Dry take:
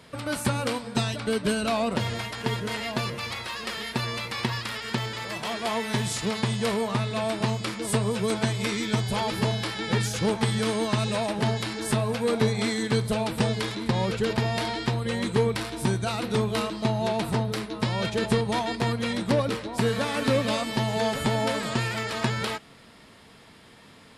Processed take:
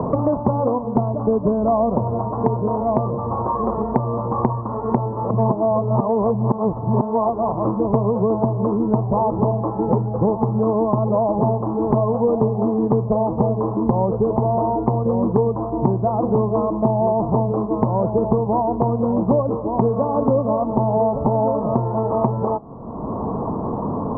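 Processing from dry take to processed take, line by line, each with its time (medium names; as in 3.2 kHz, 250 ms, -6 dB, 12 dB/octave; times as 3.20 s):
5.30–7.65 s: reverse
whole clip: Chebyshev low-pass 1.1 kHz, order 6; dynamic bell 640 Hz, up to +5 dB, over -39 dBFS, Q 1.3; three bands compressed up and down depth 100%; trim +6 dB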